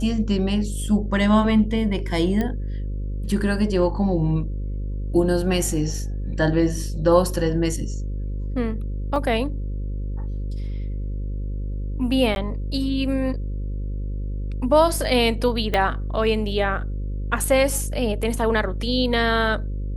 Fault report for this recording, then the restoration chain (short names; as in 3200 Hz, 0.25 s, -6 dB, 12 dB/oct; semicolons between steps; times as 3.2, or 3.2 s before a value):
buzz 50 Hz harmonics 11 -27 dBFS
2.41 pop -13 dBFS
9.16 gap 2 ms
12.35–12.36 gap 11 ms
15.74 pop -9 dBFS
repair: de-click; de-hum 50 Hz, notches 11; interpolate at 9.16, 2 ms; interpolate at 12.35, 11 ms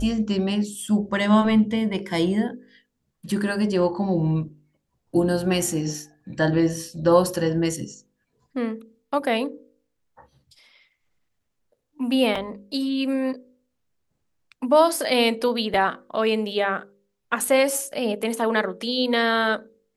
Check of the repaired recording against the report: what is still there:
15.74 pop